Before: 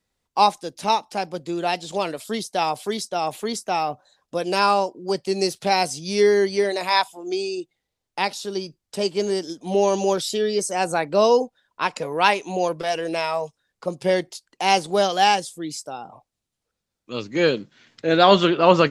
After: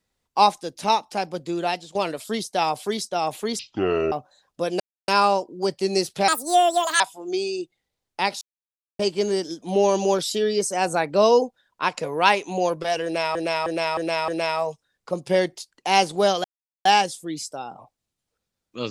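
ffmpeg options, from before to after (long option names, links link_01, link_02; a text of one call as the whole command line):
ffmpeg -i in.wav -filter_complex "[0:a]asplit=14[link_01][link_02][link_03][link_04][link_05][link_06][link_07][link_08][link_09][link_10][link_11][link_12][link_13][link_14];[link_01]atrim=end=1.95,asetpts=PTS-STARTPTS,afade=type=out:start_time=1.53:duration=0.42:curve=qsin:silence=0.133352[link_15];[link_02]atrim=start=1.95:end=3.594,asetpts=PTS-STARTPTS,afade=type=in:duration=0.004:curve=hsin:silence=0.133352[link_16];[link_03]atrim=start=3.59:end=3.86,asetpts=PTS-STARTPTS,asetrate=22491,aresample=44100,atrim=end_sample=23347,asetpts=PTS-STARTPTS[link_17];[link_04]atrim=start=3.856:end=4.54,asetpts=PTS-STARTPTS,afade=type=out:start_time=0.68:duration=0.004:curve=hsin,apad=pad_dur=0.28[link_18];[link_05]atrim=start=4.54:end=5.744,asetpts=PTS-STARTPTS,afade=type=in:duration=0.004:curve=hsin[link_19];[link_06]atrim=start=5.74:end=6.99,asetpts=PTS-STARTPTS,asetrate=76293,aresample=44100,atrim=end_sample=31864,asetpts=PTS-STARTPTS[link_20];[link_07]atrim=start=6.986:end=8.4,asetpts=PTS-STARTPTS,afade=type=out:start_time=1.41:duration=0.004:curve=hsin[link_21];[link_08]atrim=start=8.4:end=8.98,asetpts=PTS-STARTPTS,volume=0[link_22];[link_09]atrim=start=8.98:end=13.342,asetpts=PTS-STARTPTS,afade=type=in:duration=0.004:curve=hsin[link_23];[link_10]atrim=start=13.028:end=13.342[link_24];[link_11]atrim=start=13.028:end=13.342[link_25];[link_12]atrim=start=13.028:end=13.342[link_26];[link_13]atrim=start=13.028:end=15.19,asetpts=PTS-STARTPTS,afade=type=out:start_time=2.158:duration=0.004:curve=hsin,apad=pad_dur=0.41[link_27];[link_14]atrim=start=15.19,asetpts=PTS-STARTPTS,afade=type=in:duration=0.004:curve=hsin[link_28];[link_15][link_16]concat=n=2:v=0:a=1[link_29];[link_29][link_17]acrossfade=duration=0.004:curve1=hsin:curve2=hsin[link_30];[link_18][link_19]concat=n=2:v=0:a=1[link_31];[link_30][link_31]acrossfade=duration=0.004:curve1=hsin:curve2=hsin[link_32];[link_32][link_20]acrossfade=duration=0.004:curve1=hsin:curve2=hsin[link_33];[link_21][link_22][link_23]concat=n=3:v=0:a=1[link_34];[link_33][link_34]acrossfade=duration=0.004:curve1=hsin:curve2=hsin[link_35];[link_35][link_24]acrossfade=duration=0.004:curve1=hsin:curve2=hsin[link_36];[link_36][link_25]acrossfade=duration=0.004:curve1=hsin:curve2=hsin[link_37];[link_37][link_26]acrossfade=duration=0.004:curve1=hsin:curve2=hsin[link_38];[link_27][link_28]concat=n=2:v=0:a=1[link_39];[link_38][link_39]acrossfade=duration=0.004:curve1=hsin:curve2=hsin" out.wav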